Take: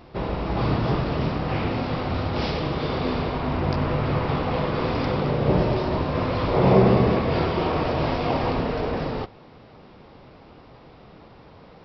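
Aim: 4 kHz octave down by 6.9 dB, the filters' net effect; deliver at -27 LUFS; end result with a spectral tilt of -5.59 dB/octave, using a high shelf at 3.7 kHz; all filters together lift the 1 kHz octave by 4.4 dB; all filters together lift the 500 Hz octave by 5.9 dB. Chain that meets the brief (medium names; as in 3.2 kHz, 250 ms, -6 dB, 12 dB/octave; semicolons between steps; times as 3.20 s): peaking EQ 500 Hz +6.5 dB; peaking EQ 1 kHz +4 dB; treble shelf 3.7 kHz -8 dB; peaking EQ 4 kHz -4.5 dB; trim -6.5 dB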